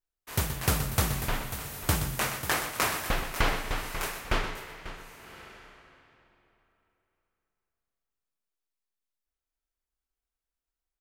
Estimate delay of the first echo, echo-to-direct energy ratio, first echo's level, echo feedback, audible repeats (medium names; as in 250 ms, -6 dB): 124 ms, -10.0 dB, -10.0 dB, 18%, 2